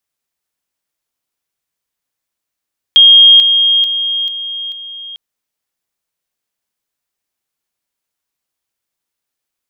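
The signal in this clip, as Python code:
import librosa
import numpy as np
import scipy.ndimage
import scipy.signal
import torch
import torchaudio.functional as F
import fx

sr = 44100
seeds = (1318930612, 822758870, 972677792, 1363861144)

y = fx.level_ladder(sr, hz=3240.0, from_db=-1.5, step_db=-6.0, steps=5, dwell_s=0.44, gap_s=0.0)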